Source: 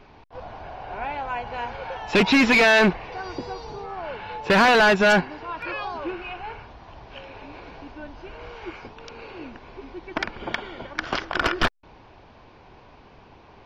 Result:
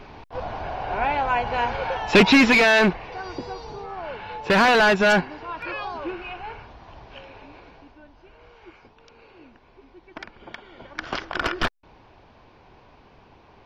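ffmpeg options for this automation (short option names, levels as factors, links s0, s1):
-af "volume=5.96,afade=t=out:st=1.79:d=0.85:silence=0.421697,afade=t=out:st=6.98:d=1.05:silence=0.298538,afade=t=in:st=10.64:d=0.45:silence=0.375837"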